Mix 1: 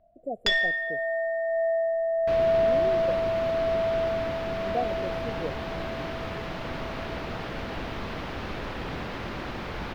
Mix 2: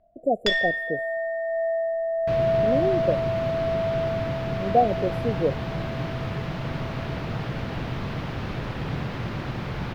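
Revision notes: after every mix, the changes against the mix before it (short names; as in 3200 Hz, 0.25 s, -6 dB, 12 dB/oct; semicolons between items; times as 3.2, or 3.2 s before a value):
speech +10.5 dB; second sound: add bell 130 Hz +13 dB 1 oct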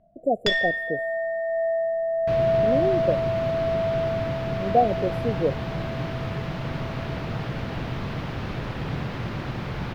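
first sound: add bell 170 Hz +13.5 dB 1.2 oct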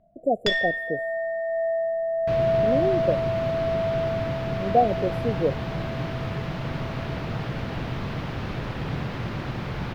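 first sound: send -8.0 dB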